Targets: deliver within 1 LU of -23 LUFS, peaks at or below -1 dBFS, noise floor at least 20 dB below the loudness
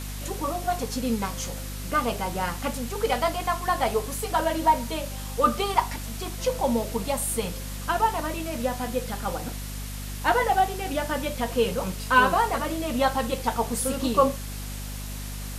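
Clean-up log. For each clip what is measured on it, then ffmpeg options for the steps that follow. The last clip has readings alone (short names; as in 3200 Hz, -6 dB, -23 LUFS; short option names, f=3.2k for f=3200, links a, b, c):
hum 50 Hz; harmonics up to 250 Hz; hum level -33 dBFS; noise floor -34 dBFS; noise floor target -47 dBFS; loudness -26.5 LUFS; peak -6.5 dBFS; loudness target -23.0 LUFS
-> -af "bandreject=f=50:t=h:w=6,bandreject=f=100:t=h:w=6,bandreject=f=150:t=h:w=6,bandreject=f=200:t=h:w=6,bandreject=f=250:t=h:w=6"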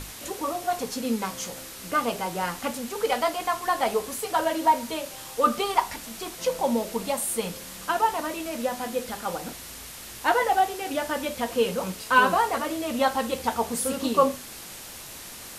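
hum none; noise floor -41 dBFS; noise floor target -47 dBFS
-> -af "afftdn=nr=6:nf=-41"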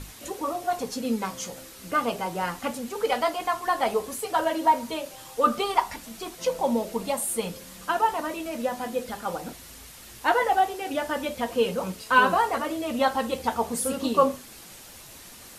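noise floor -46 dBFS; noise floor target -47 dBFS
-> -af "afftdn=nr=6:nf=-46"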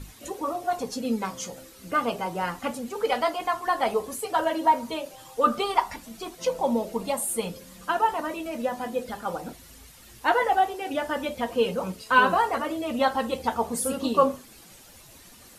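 noise floor -50 dBFS; loudness -26.5 LUFS; peak -6.5 dBFS; loudness target -23.0 LUFS
-> -af "volume=3.5dB"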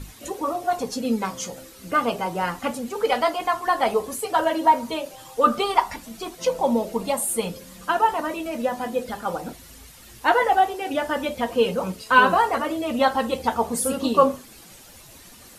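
loudness -23.0 LUFS; peak -3.0 dBFS; noise floor -47 dBFS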